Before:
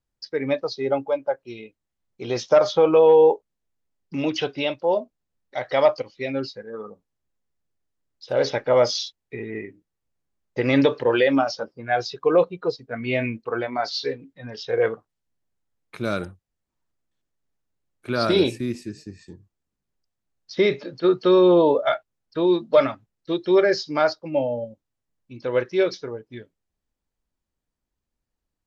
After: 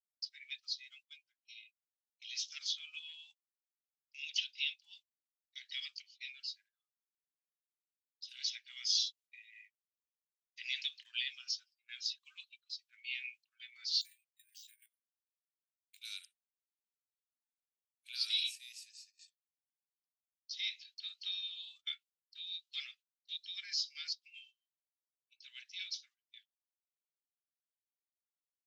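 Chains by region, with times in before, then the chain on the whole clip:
14.01–16.01 HPF 1200 Hz 24 dB/oct + compressor 16:1, threshold -45 dBFS + careless resampling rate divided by 4×, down filtered, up hold
whole clip: steep high-pass 2700 Hz 36 dB/oct; gate -57 dBFS, range -17 dB; gain -4 dB

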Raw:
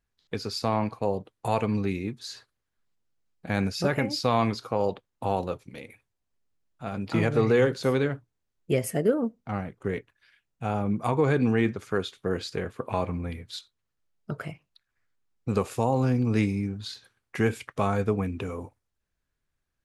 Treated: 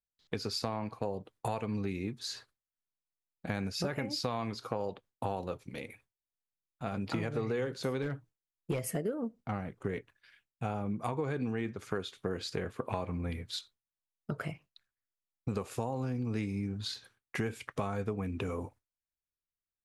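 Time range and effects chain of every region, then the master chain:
8.02–8.96 comb 6.3 ms, depth 36% + hard clip -19.5 dBFS
whole clip: gate with hold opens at -50 dBFS; compressor, threshold -31 dBFS

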